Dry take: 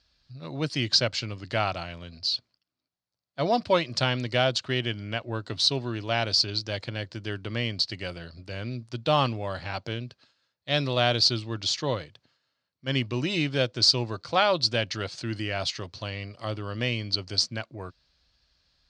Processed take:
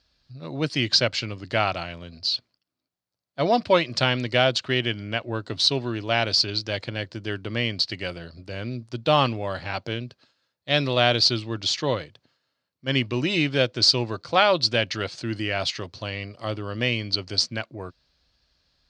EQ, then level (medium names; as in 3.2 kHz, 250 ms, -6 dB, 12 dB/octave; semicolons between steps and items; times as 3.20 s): dynamic bell 2.3 kHz, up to +5 dB, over -40 dBFS, Q 0.79; peaking EQ 360 Hz +4 dB 2.5 oct; 0.0 dB